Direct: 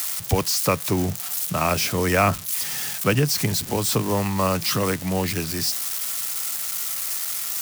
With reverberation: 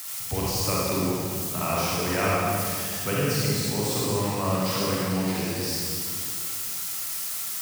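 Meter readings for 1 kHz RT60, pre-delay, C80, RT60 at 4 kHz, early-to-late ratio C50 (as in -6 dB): 2.2 s, 39 ms, -2.0 dB, 2.1 s, -5.0 dB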